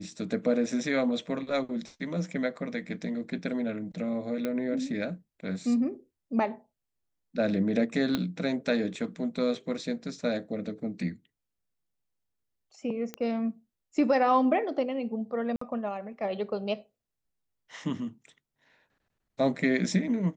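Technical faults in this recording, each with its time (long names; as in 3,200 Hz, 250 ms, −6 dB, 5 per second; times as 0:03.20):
0:04.45: click −18 dBFS
0:08.15: click −14 dBFS
0:13.14: click −20 dBFS
0:15.56–0:15.61: drop-out 54 ms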